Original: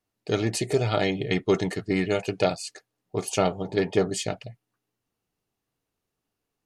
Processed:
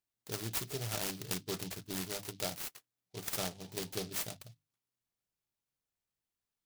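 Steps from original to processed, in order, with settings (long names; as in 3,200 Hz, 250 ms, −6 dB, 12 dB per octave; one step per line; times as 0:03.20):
guitar amp tone stack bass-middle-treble 5-5-5
mains-hum notches 50/100/150/200/250/300 Hz
short delay modulated by noise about 4,000 Hz, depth 0.17 ms
level +2 dB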